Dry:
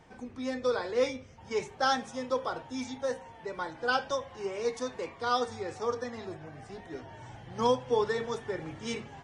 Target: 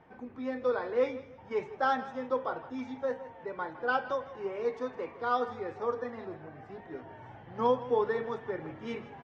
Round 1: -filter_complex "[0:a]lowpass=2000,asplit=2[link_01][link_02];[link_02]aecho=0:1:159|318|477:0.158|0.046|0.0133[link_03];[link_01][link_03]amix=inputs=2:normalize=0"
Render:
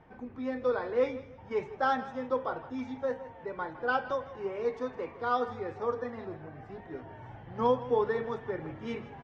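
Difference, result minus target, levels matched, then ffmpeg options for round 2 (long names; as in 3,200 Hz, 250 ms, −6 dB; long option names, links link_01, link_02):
125 Hz band +3.5 dB
-filter_complex "[0:a]lowpass=2000,lowshelf=frequency=93:gain=-11.5,asplit=2[link_01][link_02];[link_02]aecho=0:1:159|318|477:0.158|0.046|0.0133[link_03];[link_01][link_03]amix=inputs=2:normalize=0"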